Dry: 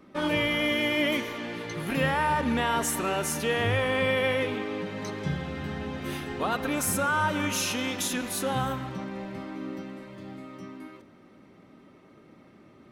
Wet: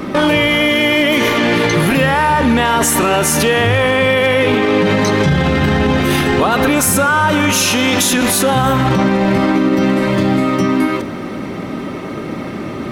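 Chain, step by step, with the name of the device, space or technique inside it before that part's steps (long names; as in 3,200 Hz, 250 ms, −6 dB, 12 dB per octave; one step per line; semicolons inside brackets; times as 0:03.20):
loud club master (downward compressor 2.5 to 1, threshold −31 dBFS, peak gain reduction 7 dB; hard clipping −24 dBFS, distortion −29 dB; boost into a limiter +34.5 dB)
level −4.5 dB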